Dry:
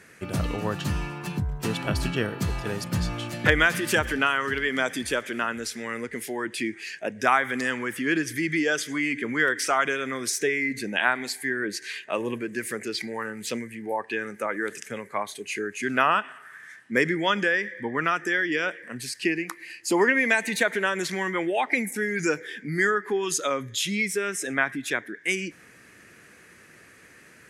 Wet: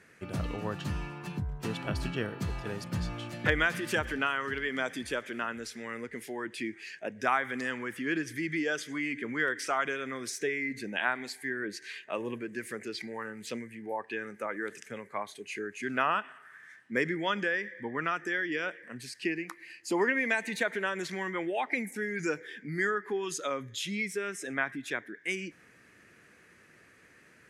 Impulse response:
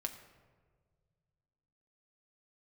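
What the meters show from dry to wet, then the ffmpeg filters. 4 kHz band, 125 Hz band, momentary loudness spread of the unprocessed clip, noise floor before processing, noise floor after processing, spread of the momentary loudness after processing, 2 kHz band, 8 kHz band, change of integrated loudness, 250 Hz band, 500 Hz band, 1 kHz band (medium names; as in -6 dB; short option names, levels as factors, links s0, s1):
-8.0 dB, -6.5 dB, 10 LU, -52 dBFS, -59 dBFS, 10 LU, -7.0 dB, -10.5 dB, -7.0 dB, -6.5 dB, -6.5 dB, -6.5 dB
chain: -af "highshelf=f=6500:g=-7.5,volume=0.473"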